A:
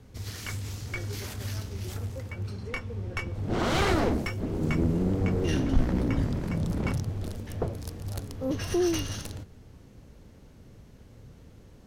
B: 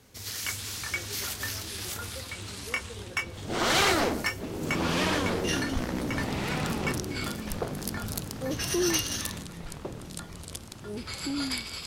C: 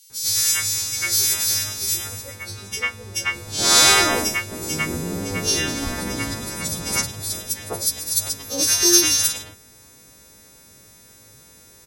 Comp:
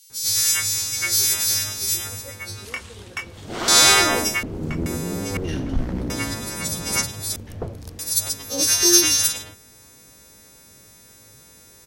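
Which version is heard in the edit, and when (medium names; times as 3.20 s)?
C
2.65–3.68 s: from B
4.43–4.86 s: from A
5.37–6.10 s: from A
7.36–7.99 s: from A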